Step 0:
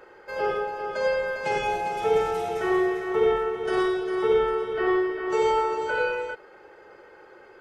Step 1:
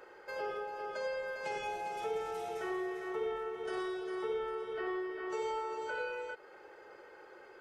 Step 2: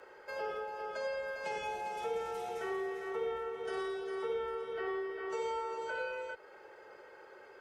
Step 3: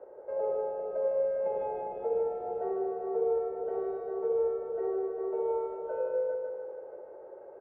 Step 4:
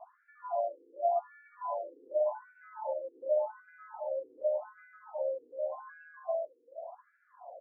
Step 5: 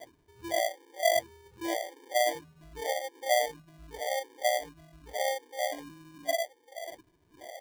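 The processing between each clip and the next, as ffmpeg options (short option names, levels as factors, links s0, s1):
-af "bass=f=250:g=-6,treble=f=4000:g=3,acompressor=threshold=0.0141:ratio=2,volume=0.596"
-af "afreqshift=17"
-af "lowpass=f=600:t=q:w=3.4,aecho=1:1:151|302|453|604|755|906|1057|1208|1359:0.631|0.379|0.227|0.136|0.0818|0.0491|0.0294|0.0177|0.0106"
-af "afreqshift=150,afftfilt=real='re*between(b*sr/1024,340*pow(1900/340,0.5+0.5*sin(2*PI*0.87*pts/sr))/1.41,340*pow(1900/340,0.5+0.5*sin(2*PI*0.87*pts/sr))*1.41)':imag='im*between(b*sr/1024,340*pow(1900/340,0.5+0.5*sin(2*PI*0.87*pts/sr))/1.41,340*pow(1900/340,0.5+0.5*sin(2*PI*0.87*pts/sr))*1.41)':win_size=1024:overlap=0.75,volume=1.19"
-af "acrusher=samples=33:mix=1:aa=0.000001,volume=1.41"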